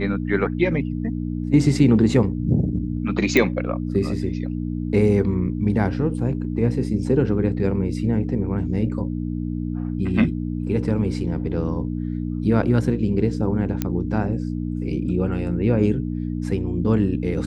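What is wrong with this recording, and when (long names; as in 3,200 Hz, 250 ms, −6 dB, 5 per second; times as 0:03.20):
mains hum 60 Hz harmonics 5 −26 dBFS
0:03.37: click −5 dBFS
0:13.82: click −8 dBFS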